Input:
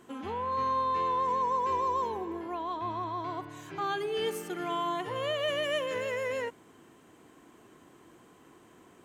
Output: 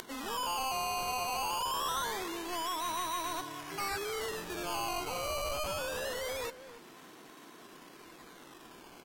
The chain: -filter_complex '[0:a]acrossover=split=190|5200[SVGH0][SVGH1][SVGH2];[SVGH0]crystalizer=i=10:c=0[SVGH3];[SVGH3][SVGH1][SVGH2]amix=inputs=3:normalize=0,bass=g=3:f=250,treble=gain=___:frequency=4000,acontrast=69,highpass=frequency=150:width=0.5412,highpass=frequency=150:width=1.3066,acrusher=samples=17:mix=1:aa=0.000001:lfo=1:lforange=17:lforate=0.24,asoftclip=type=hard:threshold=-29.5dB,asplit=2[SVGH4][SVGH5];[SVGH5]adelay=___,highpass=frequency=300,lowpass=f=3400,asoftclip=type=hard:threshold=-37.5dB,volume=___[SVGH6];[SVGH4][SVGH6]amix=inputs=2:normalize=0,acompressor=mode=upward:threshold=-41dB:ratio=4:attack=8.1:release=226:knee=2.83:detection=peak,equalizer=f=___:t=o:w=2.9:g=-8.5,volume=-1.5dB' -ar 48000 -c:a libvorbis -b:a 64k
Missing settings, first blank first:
-3, 280, -7dB, 220